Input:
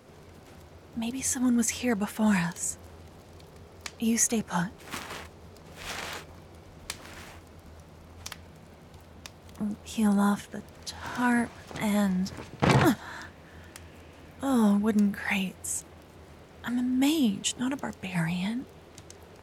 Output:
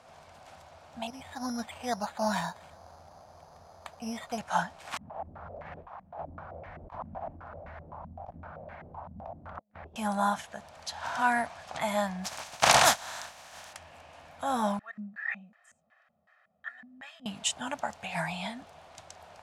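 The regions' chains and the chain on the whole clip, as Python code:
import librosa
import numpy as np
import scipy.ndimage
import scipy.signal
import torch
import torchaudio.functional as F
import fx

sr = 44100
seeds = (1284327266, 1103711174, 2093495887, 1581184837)

y = fx.chain(x, sr, fx.lowpass(hz=1500.0, slope=12),
    fx.resample_bad(factor=8, down='none', up='hold'), at=(1.07, 4.38))
y = fx.chain(y, sr, fx.low_shelf(hz=260.0, db=8.0),
    fx.over_compress(threshold_db=-41.0, ratio=-0.5),
    fx.filter_held_lowpass(hz=7.8, low_hz=210.0, high_hz=1900.0), at=(4.97, 9.96))
y = fx.spec_flatten(y, sr, power=0.43, at=(12.24, 13.72), fade=0.02)
y = fx.peak_eq(y, sr, hz=6200.0, db=3.5, octaves=0.42, at=(12.24, 13.72), fade=0.02)
y = fx.chain(y, sr, fx.low_shelf(hz=500.0, db=-4.5),
    fx.comb(ms=1.6, depth=0.92),
    fx.filter_lfo_bandpass(shape='square', hz=2.7, low_hz=220.0, high_hz=1700.0, q=7.1), at=(14.79, 17.26))
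y = scipy.signal.sosfilt(scipy.signal.butter(2, 9500.0, 'lowpass', fs=sr, output='sos'), y)
y = fx.low_shelf_res(y, sr, hz=520.0, db=-9.0, q=3.0)
y = fx.notch(y, sr, hz=2000.0, q=25.0)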